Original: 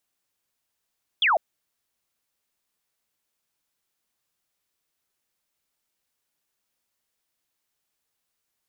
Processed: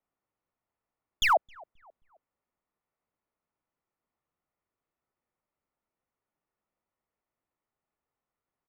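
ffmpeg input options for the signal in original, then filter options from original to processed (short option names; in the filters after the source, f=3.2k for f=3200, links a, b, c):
-f lavfi -i "aevalsrc='0.141*clip(t/0.002,0,1)*clip((0.15-t)/0.002,0,1)*sin(2*PI*3600*0.15/log(590/3600)*(exp(log(590/3600)*t/0.15)-1))':d=0.15:s=44100"
-filter_complex "[0:a]bandreject=f=1.6k:w=7.6,acrossover=split=120|1900[a][b][c];[c]acrusher=bits=4:dc=4:mix=0:aa=0.000001[d];[a][b][d]amix=inputs=3:normalize=0,asplit=2[e][f];[f]adelay=266,lowpass=f=1.1k:p=1,volume=-23.5dB,asplit=2[g][h];[h]adelay=266,lowpass=f=1.1k:p=1,volume=0.49,asplit=2[i][j];[j]adelay=266,lowpass=f=1.1k:p=1,volume=0.49[k];[e][g][i][k]amix=inputs=4:normalize=0"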